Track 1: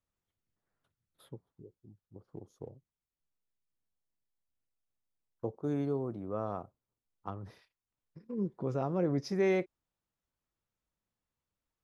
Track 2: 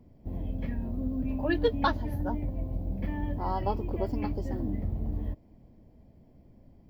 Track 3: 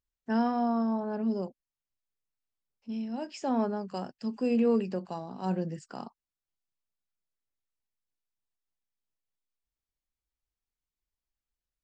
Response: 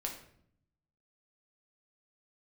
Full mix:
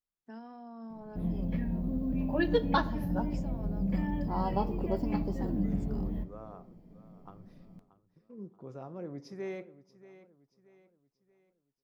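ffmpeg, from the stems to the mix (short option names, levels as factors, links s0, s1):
-filter_complex "[0:a]volume=0.237,asplit=3[s0][s1][s2];[s1]volume=0.282[s3];[s2]volume=0.2[s4];[1:a]equalizer=f=180:t=o:w=0.29:g=15,adelay=900,volume=0.631,asplit=2[s5][s6];[s6]volume=0.447[s7];[2:a]alimiter=level_in=1.41:limit=0.0631:level=0:latency=1,volume=0.708,volume=0.237[s8];[3:a]atrim=start_sample=2205[s9];[s3][s7]amix=inputs=2:normalize=0[s10];[s10][s9]afir=irnorm=-1:irlink=0[s11];[s4]aecho=0:1:631|1262|1893|2524|3155|3786:1|0.4|0.16|0.064|0.0256|0.0102[s12];[s0][s5][s8][s11][s12]amix=inputs=5:normalize=0,equalizer=f=74:t=o:w=0.56:g=-13.5"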